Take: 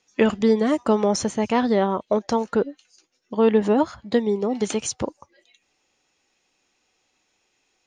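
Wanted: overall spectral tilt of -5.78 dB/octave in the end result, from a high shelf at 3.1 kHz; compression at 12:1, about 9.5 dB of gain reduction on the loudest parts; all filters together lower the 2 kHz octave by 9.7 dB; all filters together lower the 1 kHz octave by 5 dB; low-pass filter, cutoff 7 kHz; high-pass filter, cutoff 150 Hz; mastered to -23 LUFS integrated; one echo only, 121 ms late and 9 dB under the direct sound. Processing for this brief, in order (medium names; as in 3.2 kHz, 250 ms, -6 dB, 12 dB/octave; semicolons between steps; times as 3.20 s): high-pass 150 Hz; low-pass 7 kHz; peaking EQ 1 kHz -4 dB; peaking EQ 2 kHz -8 dB; treble shelf 3.1 kHz -8.5 dB; compression 12:1, threshold -23 dBFS; delay 121 ms -9 dB; trim +6.5 dB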